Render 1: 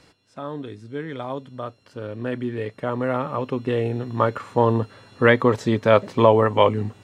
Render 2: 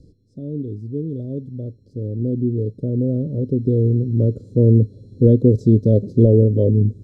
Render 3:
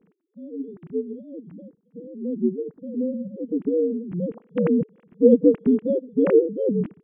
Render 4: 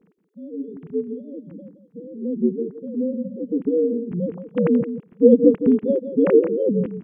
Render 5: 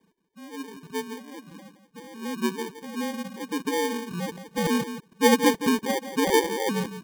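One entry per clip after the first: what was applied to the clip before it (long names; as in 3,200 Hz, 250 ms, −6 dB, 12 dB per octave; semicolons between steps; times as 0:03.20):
inverse Chebyshev band-stop filter 780–2,800 Hz, stop band 40 dB; spectral tilt −4 dB per octave; level −1 dB
three sine waves on the formant tracks; expander for the loud parts 1.5 to 1, over −21 dBFS; level −3 dB
single-tap delay 170 ms −11 dB; level +2 dB
decimation without filtering 33×; level −6.5 dB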